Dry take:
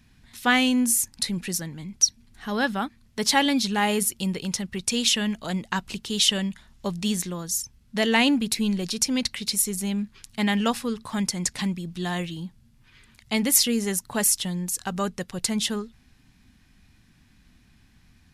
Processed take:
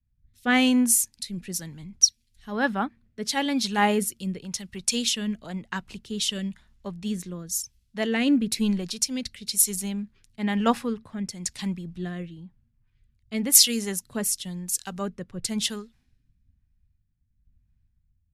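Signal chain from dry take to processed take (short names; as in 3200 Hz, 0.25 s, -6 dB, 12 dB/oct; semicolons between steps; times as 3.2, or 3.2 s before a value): in parallel at +1 dB: compressor, threshold -36 dBFS, peak gain reduction 21 dB; on the sum: rotary speaker horn 1 Hz; three-band expander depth 100%; gain -3.5 dB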